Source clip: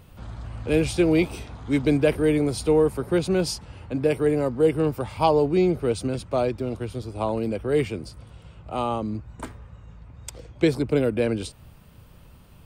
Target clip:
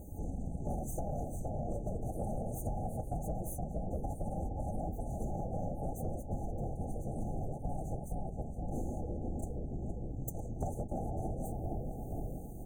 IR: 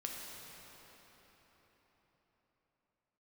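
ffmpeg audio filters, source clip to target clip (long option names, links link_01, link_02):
-filter_complex "[0:a]aeval=exprs='abs(val(0))':channel_layout=same,afftfilt=real='hypot(re,im)*cos(2*PI*random(0))':imag='hypot(re,im)*sin(2*PI*random(1))':win_size=512:overlap=0.75,alimiter=limit=-23dB:level=0:latency=1:release=45,afftfilt=real='re*(1-between(b*sr/4096,860,6000))':imag='im*(1-between(b*sr/4096,860,6000))':win_size=4096:overlap=0.75,adynamicequalizer=threshold=0.00126:dfrequency=410:dqfactor=4.9:tfrequency=410:tqfactor=4.9:attack=5:release=100:ratio=0.375:range=2:mode=cutabove:tftype=bell,asplit=2[link_01][link_02];[link_02]adelay=467,lowpass=frequency=1000:poles=1,volume=-4dB,asplit=2[link_03][link_04];[link_04]adelay=467,lowpass=frequency=1000:poles=1,volume=0.34,asplit=2[link_05][link_06];[link_06]adelay=467,lowpass=frequency=1000:poles=1,volume=0.34,asplit=2[link_07][link_08];[link_08]adelay=467,lowpass=frequency=1000:poles=1,volume=0.34[link_09];[link_01][link_03][link_05][link_07][link_09]amix=inputs=5:normalize=0,asoftclip=type=tanh:threshold=-13.5dB,flanger=delay=3.6:depth=5.5:regen=-70:speed=0.22:shape=sinusoidal,acompressor=threshold=-48dB:ratio=10,volume=14.5dB"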